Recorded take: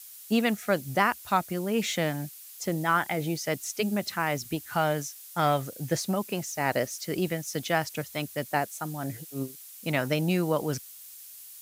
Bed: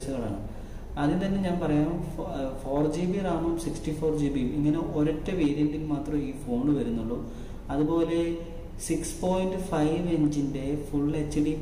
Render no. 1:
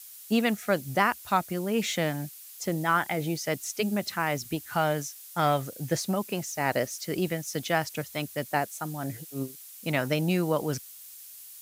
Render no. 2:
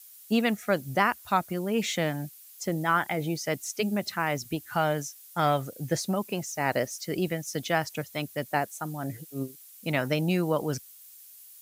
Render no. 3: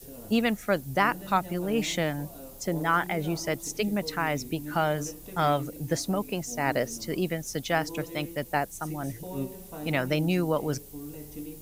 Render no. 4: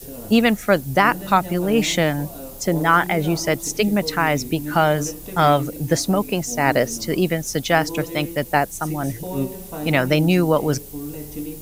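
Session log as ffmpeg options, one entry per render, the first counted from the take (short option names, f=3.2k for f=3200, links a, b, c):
-af anull
-af "afftdn=nr=6:nf=-47"
-filter_complex "[1:a]volume=-14dB[a];[0:a][a]amix=inputs=2:normalize=0"
-af "volume=9dB,alimiter=limit=-3dB:level=0:latency=1"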